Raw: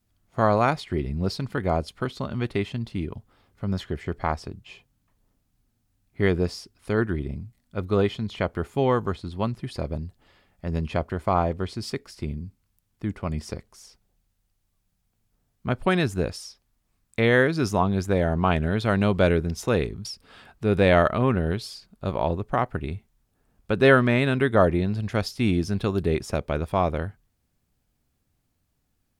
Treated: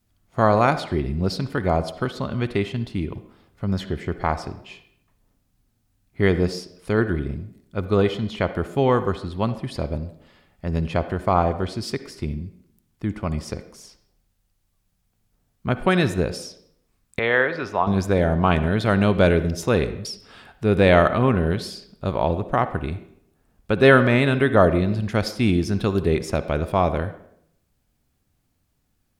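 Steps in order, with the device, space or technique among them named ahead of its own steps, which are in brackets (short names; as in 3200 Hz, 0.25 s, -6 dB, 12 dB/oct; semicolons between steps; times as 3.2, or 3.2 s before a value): filtered reverb send (on a send: HPF 230 Hz 12 dB/oct + LPF 4900 Hz + reverb RT60 0.70 s, pre-delay 47 ms, DRR 12 dB); 17.19–17.87 on the sum: three-band isolator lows -14 dB, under 480 Hz, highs -22 dB, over 3600 Hz; gain +3 dB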